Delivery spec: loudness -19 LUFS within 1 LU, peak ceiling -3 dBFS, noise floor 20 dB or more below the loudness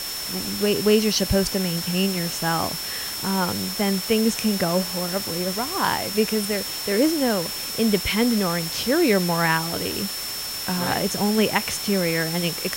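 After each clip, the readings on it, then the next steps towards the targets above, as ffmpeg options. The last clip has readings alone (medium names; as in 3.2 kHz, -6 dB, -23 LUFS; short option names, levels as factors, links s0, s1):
steady tone 5.4 kHz; tone level -31 dBFS; noise floor -30 dBFS; noise floor target -43 dBFS; loudness -22.5 LUFS; peak level -4.0 dBFS; loudness target -19.0 LUFS
-> -af "bandreject=f=5400:w=30"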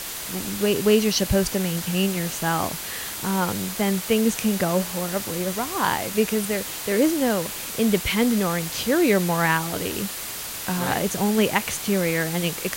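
steady tone not found; noise floor -33 dBFS; noise floor target -43 dBFS
-> -af "afftdn=nr=10:nf=-33"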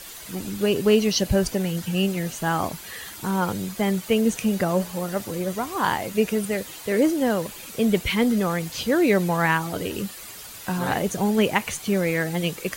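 noise floor -40 dBFS; noise floor target -44 dBFS
-> -af "afftdn=nr=6:nf=-40"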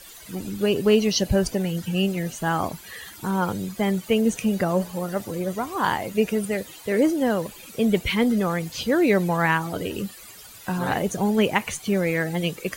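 noise floor -44 dBFS; loudness -24.0 LUFS; peak level -5.0 dBFS; loudness target -19.0 LUFS
-> -af "volume=1.78,alimiter=limit=0.708:level=0:latency=1"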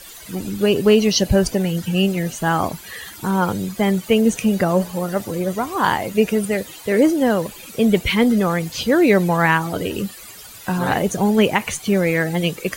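loudness -19.0 LUFS; peak level -3.0 dBFS; noise floor -39 dBFS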